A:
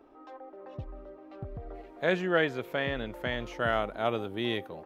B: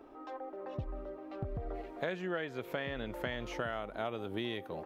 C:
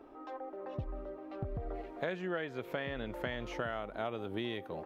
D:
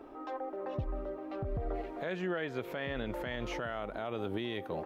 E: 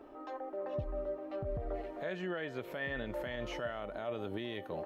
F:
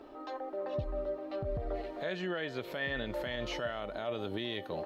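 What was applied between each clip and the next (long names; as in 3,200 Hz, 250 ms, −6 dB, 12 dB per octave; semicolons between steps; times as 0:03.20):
downward compressor 10 to 1, threshold −36 dBFS, peak gain reduction 16 dB; level +3 dB
high-shelf EQ 5,000 Hz −5 dB
brickwall limiter −30 dBFS, peak gain reduction 9.5 dB; level +4.5 dB
tuned comb filter 600 Hz, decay 0.28 s, harmonics odd, mix 80%; level +10 dB
parametric band 4,200 Hz +9.5 dB 0.83 octaves; level +2 dB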